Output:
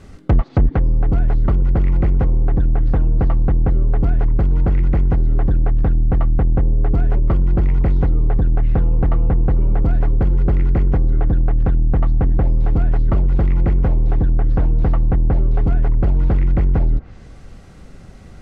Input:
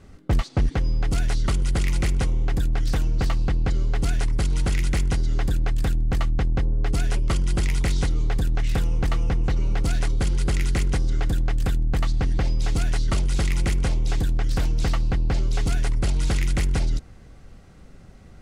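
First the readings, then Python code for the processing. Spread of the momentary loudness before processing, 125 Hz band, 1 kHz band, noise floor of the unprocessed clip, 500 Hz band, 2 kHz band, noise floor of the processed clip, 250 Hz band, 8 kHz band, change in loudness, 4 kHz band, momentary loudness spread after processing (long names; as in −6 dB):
1 LU, +7.0 dB, +4.0 dB, −46 dBFS, +6.5 dB, −4.5 dB, −39 dBFS, +7.0 dB, below −25 dB, +6.5 dB, below −15 dB, 1 LU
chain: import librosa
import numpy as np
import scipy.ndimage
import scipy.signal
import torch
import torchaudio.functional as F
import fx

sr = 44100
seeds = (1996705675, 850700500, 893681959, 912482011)

y = fx.env_lowpass_down(x, sr, base_hz=920.0, full_db=-18.0)
y = y * librosa.db_to_amplitude(7.0)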